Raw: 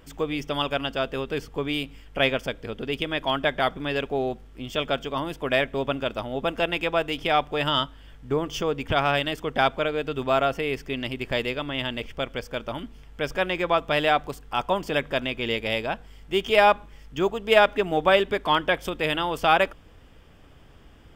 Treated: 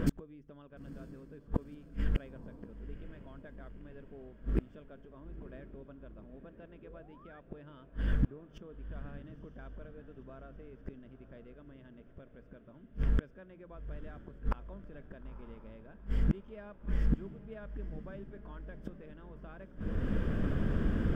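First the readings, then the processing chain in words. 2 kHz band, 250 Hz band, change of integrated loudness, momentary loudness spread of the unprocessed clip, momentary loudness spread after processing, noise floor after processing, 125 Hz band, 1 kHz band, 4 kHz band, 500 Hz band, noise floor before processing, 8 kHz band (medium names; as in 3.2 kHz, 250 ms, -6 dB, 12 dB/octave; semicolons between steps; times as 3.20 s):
-25.5 dB, -9.0 dB, -14.5 dB, 11 LU, 19 LU, -57 dBFS, -3.0 dB, -29.0 dB, -32.5 dB, -23.0 dB, -50 dBFS, under -15 dB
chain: hum notches 60/120/180 Hz; painted sound rise, 6.83–7.40 s, 390–1900 Hz -28 dBFS; graphic EQ with 31 bands 200 Hz +10 dB, 800 Hz -11 dB, 1.6 kHz +9 dB; compression 1.5:1, threshold -44 dBFS, peak gain reduction 11.5 dB; tilt shelf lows +9.5 dB, about 1.4 kHz; inverted gate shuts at -28 dBFS, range -36 dB; on a send: echo that smears into a reverb 950 ms, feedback 59%, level -13 dB; on the sum: tape noise reduction on one side only decoder only; trim +11.5 dB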